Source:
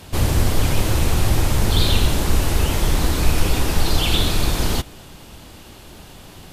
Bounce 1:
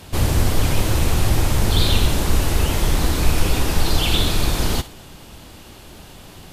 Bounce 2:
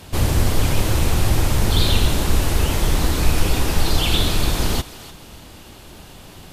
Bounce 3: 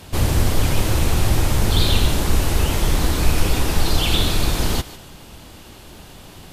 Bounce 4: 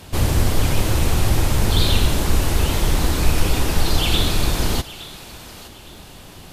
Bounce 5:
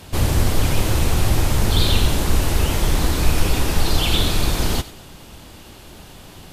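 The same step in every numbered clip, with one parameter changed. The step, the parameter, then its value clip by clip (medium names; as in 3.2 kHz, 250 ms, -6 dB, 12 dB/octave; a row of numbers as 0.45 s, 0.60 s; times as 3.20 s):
thinning echo, time: 61 ms, 298 ms, 148 ms, 865 ms, 93 ms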